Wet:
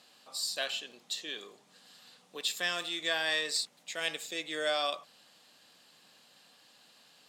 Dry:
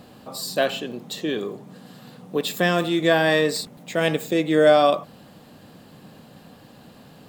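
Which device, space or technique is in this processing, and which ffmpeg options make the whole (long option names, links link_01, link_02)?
piezo pickup straight into a mixer: -af "lowpass=5900,aderivative,volume=3dB"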